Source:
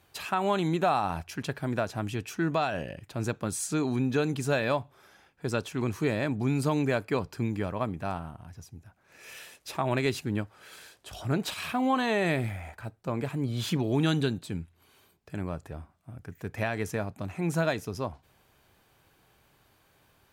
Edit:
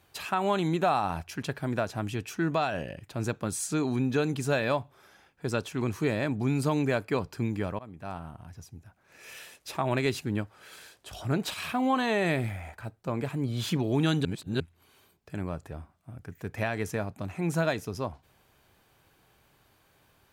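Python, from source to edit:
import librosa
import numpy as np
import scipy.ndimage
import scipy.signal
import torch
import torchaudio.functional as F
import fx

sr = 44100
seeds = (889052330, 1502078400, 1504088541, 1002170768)

y = fx.edit(x, sr, fx.fade_in_from(start_s=7.79, length_s=0.6, floor_db=-21.0),
    fx.reverse_span(start_s=14.25, length_s=0.35), tone=tone)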